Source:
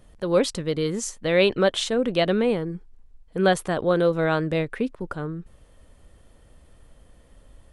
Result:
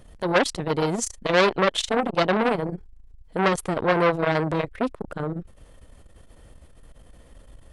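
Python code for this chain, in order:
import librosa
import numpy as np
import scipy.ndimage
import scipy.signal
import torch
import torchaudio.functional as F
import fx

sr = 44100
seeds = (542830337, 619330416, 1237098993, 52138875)

y = fx.transformer_sat(x, sr, knee_hz=1900.0)
y = y * librosa.db_to_amplitude(5.0)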